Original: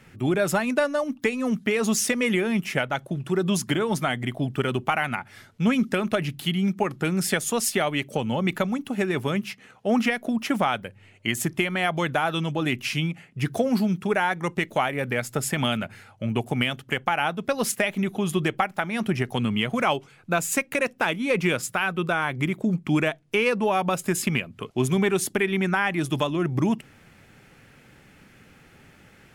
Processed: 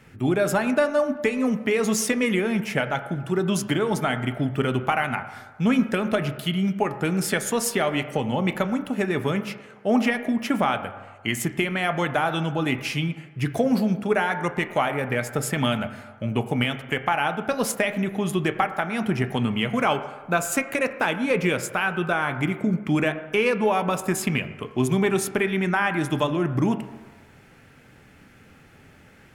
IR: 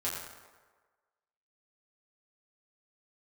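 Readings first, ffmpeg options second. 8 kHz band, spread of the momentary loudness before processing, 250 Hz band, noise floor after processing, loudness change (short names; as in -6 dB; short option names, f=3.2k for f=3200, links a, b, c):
-1.0 dB, 5 LU, +1.0 dB, -51 dBFS, +1.0 dB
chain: -filter_complex "[0:a]asplit=2[a][b];[1:a]atrim=start_sample=2205,lowpass=2.5k[c];[b][c]afir=irnorm=-1:irlink=0,volume=-10dB[d];[a][d]amix=inputs=2:normalize=0,volume=-1dB"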